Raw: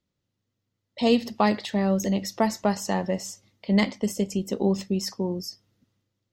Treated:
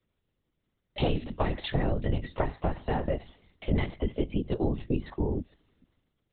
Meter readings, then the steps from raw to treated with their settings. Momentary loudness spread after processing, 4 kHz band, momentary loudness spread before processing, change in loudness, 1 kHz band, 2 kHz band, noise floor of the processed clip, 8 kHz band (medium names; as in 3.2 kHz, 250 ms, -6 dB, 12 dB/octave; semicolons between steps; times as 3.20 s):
5 LU, -8.0 dB, 8 LU, -5.5 dB, -7.0 dB, -6.5 dB, -80 dBFS, under -40 dB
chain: high-pass 120 Hz 24 dB/octave; compression 6:1, threshold -28 dBFS, peak gain reduction 12.5 dB; LPC vocoder at 8 kHz whisper; trim +4 dB